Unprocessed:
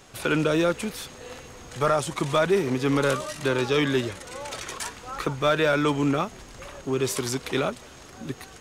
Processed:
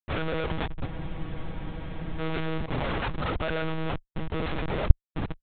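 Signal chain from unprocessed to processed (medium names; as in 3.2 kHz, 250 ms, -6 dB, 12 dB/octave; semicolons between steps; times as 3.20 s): in parallel at -3 dB: compression 10:1, threshold -33 dBFS, peak gain reduction 16 dB; on the sum: plain phase-vocoder stretch 0.63×; Schmitt trigger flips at -32 dBFS; monotone LPC vocoder at 8 kHz 160 Hz; spectral freeze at 0.88 s, 1.31 s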